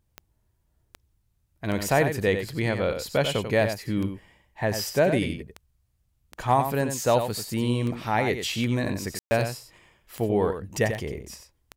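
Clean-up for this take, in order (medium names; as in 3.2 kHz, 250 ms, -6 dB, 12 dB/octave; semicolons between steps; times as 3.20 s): de-click; room tone fill 9.19–9.31 s; inverse comb 92 ms -8 dB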